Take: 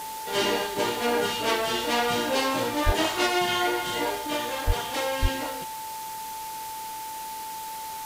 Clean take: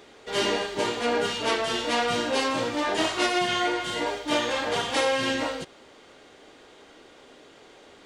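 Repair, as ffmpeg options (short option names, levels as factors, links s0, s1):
-filter_complex "[0:a]bandreject=f=880:w=30,asplit=3[s0][s1][s2];[s0]afade=t=out:st=2.85:d=0.02[s3];[s1]highpass=f=140:w=0.5412,highpass=f=140:w=1.3066,afade=t=in:st=2.85:d=0.02,afade=t=out:st=2.97:d=0.02[s4];[s2]afade=t=in:st=2.97:d=0.02[s5];[s3][s4][s5]amix=inputs=3:normalize=0,asplit=3[s6][s7][s8];[s6]afade=t=out:st=4.66:d=0.02[s9];[s7]highpass=f=140:w=0.5412,highpass=f=140:w=1.3066,afade=t=in:st=4.66:d=0.02,afade=t=out:st=4.78:d=0.02[s10];[s8]afade=t=in:st=4.78:d=0.02[s11];[s9][s10][s11]amix=inputs=3:normalize=0,asplit=3[s12][s13][s14];[s12]afade=t=out:st=5.21:d=0.02[s15];[s13]highpass=f=140:w=0.5412,highpass=f=140:w=1.3066,afade=t=in:st=5.21:d=0.02,afade=t=out:st=5.33:d=0.02[s16];[s14]afade=t=in:st=5.33:d=0.02[s17];[s15][s16][s17]amix=inputs=3:normalize=0,afwtdn=0.01,asetnsamples=n=441:p=0,asendcmd='4.27 volume volume 5dB',volume=1"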